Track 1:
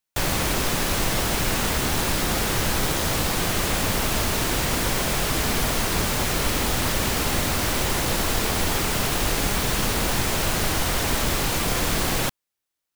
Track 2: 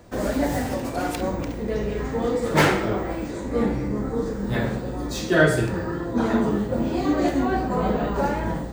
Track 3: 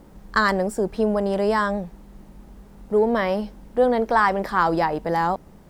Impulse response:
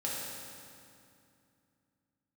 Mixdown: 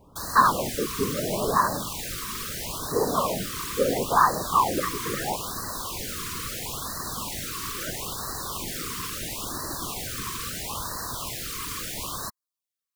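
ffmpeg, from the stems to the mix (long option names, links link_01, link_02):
-filter_complex "[0:a]highshelf=frequency=2300:gain=9,volume=-9dB[link_01];[1:a]adelay=2450,volume=-15.5dB[link_02];[2:a]volume=-0.5dB[link_03];[link_01][link_02][link_03]amix=inputs=3:normalize=0,equalizer=frequency=1100:width=4.8:gain=13.5,afftfilt=real='hypot(re,im)*cos(2*PI*random(0))':imag='hypot(re,im)*sin(2*PI*random(1))':win_size=512:overlap=0.75,afftfilt=real='re*(1-between(b*sr/1024,660*pow(2800/660,0.5+0.5*sin(2*PI*0.75*pts/sr))/1.41,660*pow(2800/660,0.5+0.5*sin(2*PI*0.75*pts/sr))*1.41))':imag='im*(1-between(b*sr/1024,660*pow(2800/660,0.5+0.5*sin(2*PI*0.75*pts/sr))/1.41,660*pow(2800/660,0.5+0.5*sin(2*PI*0.75*pts/sr))*1.41))':win_size=1024:overlap=0.75"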